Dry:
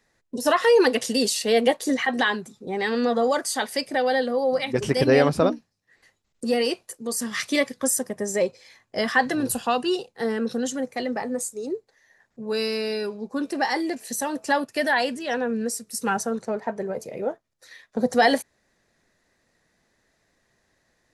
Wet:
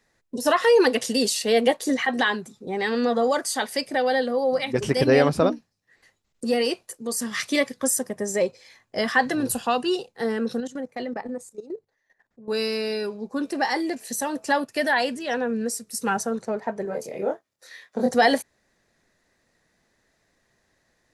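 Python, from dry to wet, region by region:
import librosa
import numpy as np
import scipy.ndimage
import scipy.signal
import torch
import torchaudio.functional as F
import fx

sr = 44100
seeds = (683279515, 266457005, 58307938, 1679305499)

y = fx.chain(x, sr, fx.high_shelf(hz=4000.0, db=-8.5),
    fx.level_steps(step_db=15),
    fx.hum_notches(base_hz=50, count=3), at=(10.6, 12.48))
y = fx.chain(y, sr, fx.highpass(hz=200.0, slope=6),
    fx.doubler(ms=25.0, db=-2), at=(16.85, 18.11))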